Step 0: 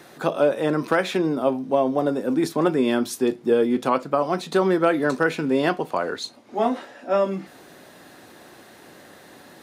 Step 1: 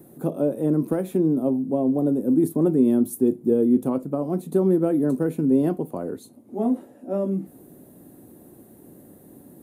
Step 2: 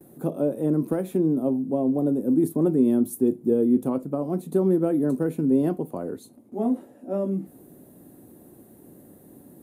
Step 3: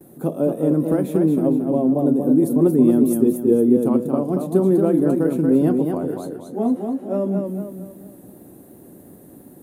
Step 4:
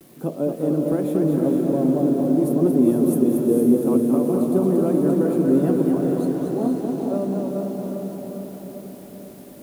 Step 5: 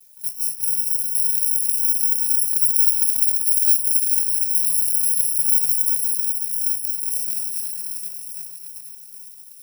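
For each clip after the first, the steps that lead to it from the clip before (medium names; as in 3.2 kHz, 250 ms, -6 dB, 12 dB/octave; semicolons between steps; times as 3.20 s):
FFT filter 280 Hz 0 dB, 1.6 kHz -26 dB, 5.3 kHz -27 dB, 11 kHz 0 dB; trim +4.5 dB
gate with hold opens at -41 dBFS; trim -1.5 dB
modulated delay 228 ms, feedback 42%, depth 87 cents, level -5 dB; trim +4 dB
bit crusher 8-bit; on a send: echo that smears into a reverb 459 ms, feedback 61%, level -3 dB; on the sum: trim -3.5 dB
bit-reversed sample order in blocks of 128 samples; pre-emphasis filter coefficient 0.9; trim -4.5 dB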